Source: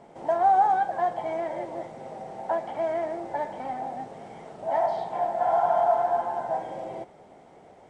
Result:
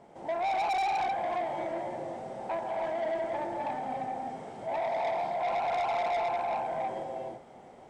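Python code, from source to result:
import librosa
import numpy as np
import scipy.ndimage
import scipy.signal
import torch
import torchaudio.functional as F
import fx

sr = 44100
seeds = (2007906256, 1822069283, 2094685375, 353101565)

y = fx.rev_gated(x, sr, seeds[0], gate_ms=360, shape='rising', drr_db=-2.0)
y = 10.0 ** (-23.0 / 20.0) * np.tanh(y / 10.0 ** (-23.0 / 20.0))
y = y * librosa.db_to_amplitude(-4.0)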